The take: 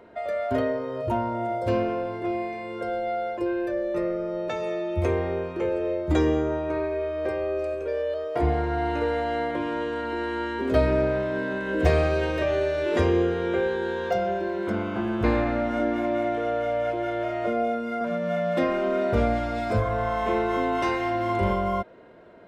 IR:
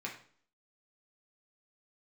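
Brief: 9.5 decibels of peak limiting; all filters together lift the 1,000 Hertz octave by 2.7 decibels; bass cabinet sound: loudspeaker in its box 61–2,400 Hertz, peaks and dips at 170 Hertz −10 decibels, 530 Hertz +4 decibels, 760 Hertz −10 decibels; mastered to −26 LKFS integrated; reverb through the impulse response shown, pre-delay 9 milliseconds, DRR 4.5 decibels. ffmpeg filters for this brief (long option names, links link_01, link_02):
-filter_complex "[0:a]equalizer=frequency=1000:width_type=o:gain=8.5,alimiter=limit=-15dB:level=0:latency=1,asplit=2[link_01][link_02];[1:a]atrim=start_sample=2205,adelay=9[link_03];[link_02][link_03]afir=irnorm=-1:irlink=0,volume=-6dB[link_04];[link_01][link_04]amix=inputs=2:normalize=0,highpass=frequency=61:width=0.5412,highpass=frequency=61:width=1.3066,equalizer=frequency=170:width_type=q:width=4:gain=-10,equalizer=frequency=530:width_type=q:width=4:gain=4,equalizer=frequency=760:width_type=q:width=4:gain=-10,lowpass=frequency=2400:width=0.5412,lowpass=frequency=2400:width=1.3066,volume=-1.5dB"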